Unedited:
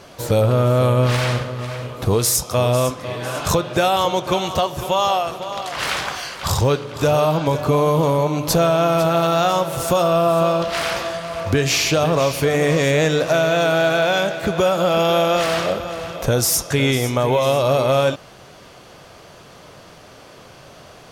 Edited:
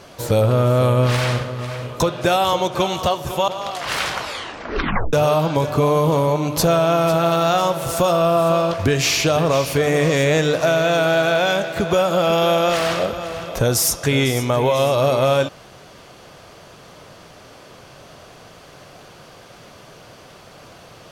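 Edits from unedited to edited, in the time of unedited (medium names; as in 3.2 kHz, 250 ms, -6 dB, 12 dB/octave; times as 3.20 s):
2.00–3.52 s: delete
5.00–5.39 s: delete
6.01 s: tape stop 1.03 s
10.65–11.41 s: delete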